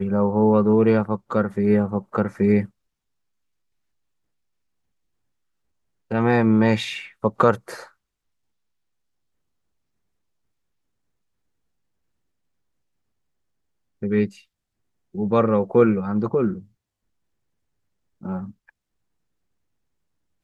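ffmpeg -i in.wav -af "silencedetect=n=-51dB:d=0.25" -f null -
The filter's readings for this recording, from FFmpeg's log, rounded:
silence_start: 2.70
silence_end: 6.10 | silence_duration: 3.41
silence_start: 7.92
silence_end: 14.02 | silence_duration: 6.10
silence_start: 14.44
silence_end: 15.14 | silence_duration: 0.70
silence_start: 16.68
silence_end: 18.21 | silence_duration: 1.53
silence_start: 18.70
silence_end: 20.43 | silence_duration: 1.74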